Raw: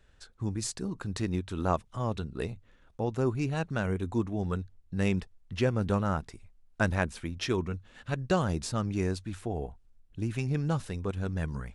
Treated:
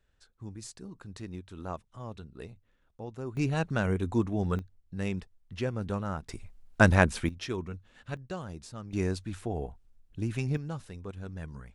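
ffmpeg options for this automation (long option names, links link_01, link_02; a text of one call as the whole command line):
ffmpeg -i in.wav -af "asetnsamples=nb_out_samples=441:pad=0,asendcmd='3.37 volume volume 2dB;4.59 volume volume -5dB;6.29 volume volume 7dB;7.29 volume volume -5dB;8.17 volume volume -11.5dB;8.93 volume volume 0dB;10.57 volume volume -8dB',volume=-10dB" out.wav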